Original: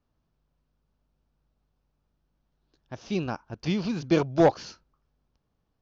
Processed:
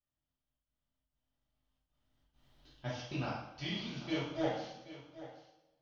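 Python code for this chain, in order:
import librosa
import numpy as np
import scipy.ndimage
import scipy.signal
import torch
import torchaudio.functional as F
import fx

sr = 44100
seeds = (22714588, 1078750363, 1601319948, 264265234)

y = fx.doppler_pass(x, sr, speed_mps=12, closest_m=1.6, pass_at_s=2.5)
y = fx.doubler(y, sr, ms=38.0, db=-11.0)
y = fx.step_gate(y, sr, bpm=135, pattern='xxxxx.xxx.x', floor_db=-60.0, edge_ms=4.5)
y = fx.graphic_eq_31(y, sr, hz=(200, 400, 2000, 3150), db=(-8, -10, 3, 11))
y = y + 10.0 ** (-15.0 / 20.0) * np.pad(y, (int(780 * sr / 1000.0), 0))[:len(y)]
y = fx.rev_double_slope(y, sr, seeds[0], early_s=0.74, late_s=2.3, knee_db=-23, drr_db=-9.0)
y = F.gain(torch.from_numpy(y), 1.0).numpy()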